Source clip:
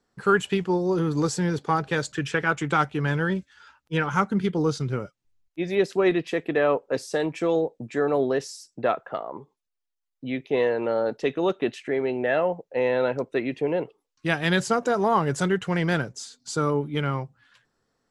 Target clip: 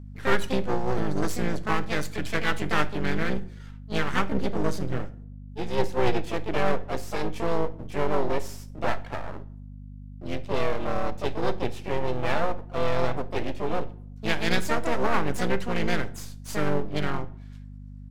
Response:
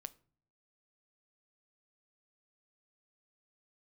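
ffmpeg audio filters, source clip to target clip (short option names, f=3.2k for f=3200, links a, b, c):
-filter_complex "[0:a]asplit=4[a][b][c][d];[b]asetrate=29433,aresample=44100,atempo=1.49831,volume=-18dB[e];[c]asetrate=37084,aresample=44100,atempo=1.18921,volume=-18dB[f];[d]asetrate=58866,aresample=44100,atempo=0.749154,volume=-3dB[g];[a][e][f][g]amix=inputs=4:normalize=0,aeval=exprs='max(val(0),0)':c=same,aeval=exprs='val(0)+0.0141*(sin(2*PI*50*n/s)+sin(2*PI*2*50*n/s)/2+sin(2*PI*3*50*n/s)/3+sin(2*PI*4*50*n/s)/4+sin(2*PI*5*50*n/s)/5)':c=same[h];[1:a]atrim=start_sample=2205,asetrate=30870,aresample=44100[i];[h][i]afir=irnorm=-1:irlink=0,volume=1.5dB"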